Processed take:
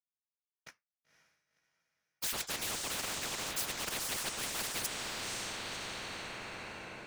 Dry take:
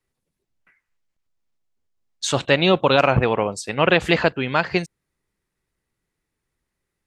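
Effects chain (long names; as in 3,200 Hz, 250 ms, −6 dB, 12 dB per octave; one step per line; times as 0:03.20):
reversed playback
downward compressor 6 to 1, threshold −28 dBFS, peak gain reduction 16 dB
reversed playback
high-pass filter 190 Hz 24 dB per octave
dead-zone distortion −51.5 dBFS
flanger 0.47 Hz, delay 8 ms, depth 4.4 ms, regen +66%
random phases in short frames
on a send: feedback delay with all-pass diffusion 517 ms, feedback 42%, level −12 dB
on the sum: every bin compressed towards the loudest bin 10 to 1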